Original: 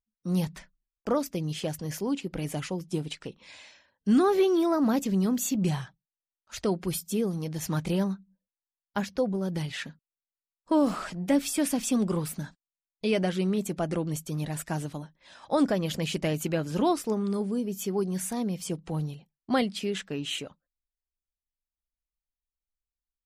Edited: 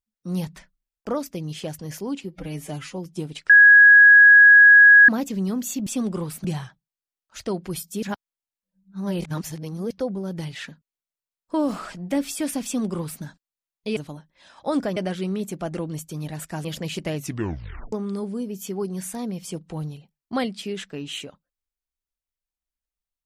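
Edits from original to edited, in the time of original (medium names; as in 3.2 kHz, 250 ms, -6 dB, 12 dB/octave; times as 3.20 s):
2.24–2.73 s: stretch 1.5×
3.25–4.84 s: bleep 1.66 kHz -7 dBFS
7.20–9.08 s: reverse
11.82–12.40 s: copy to 5.62 s
14.82–15.82 s: move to 13.14 s
16.33 s: tape stop 0.77 s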